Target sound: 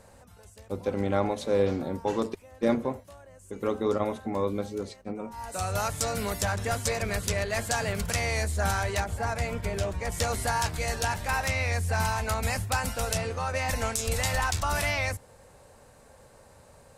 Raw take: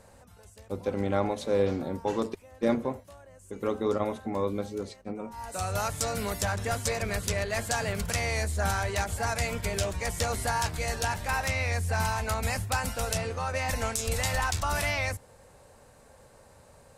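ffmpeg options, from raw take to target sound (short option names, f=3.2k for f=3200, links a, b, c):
-filter_complex "[0:a]asettb=1/sr,asplit=3[a][b][c];[a]atrim=end=9.004[d];[b]atrim=start=9:end=10.12,asetpts=PTS-STARTPTS,afade=t=in:d=0.004:c=qsin,afade=t=out:st=1.116:d=0.004:c=qsin,highshelf=f=2.4k:g=-9[e];[c]atrim=start=10.116[f];[d][e]acrossfade=d=0.004:c1=hsin:c2=qsin[g];[g][f]acrossfade=d=0.004:c1=qsin:c2=hsin,volume=1dB"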